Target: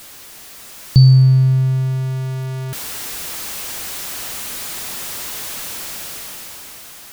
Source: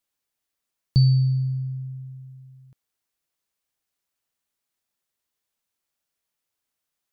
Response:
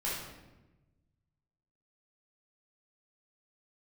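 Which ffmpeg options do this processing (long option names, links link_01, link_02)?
-af "aeval=exprs='val(0)+0.5*0.0141*sgn(val(0))':channel_layout=same,dynaudnorm=framelen=220:gausssize=11:maxgain=11dB,volume=5dB"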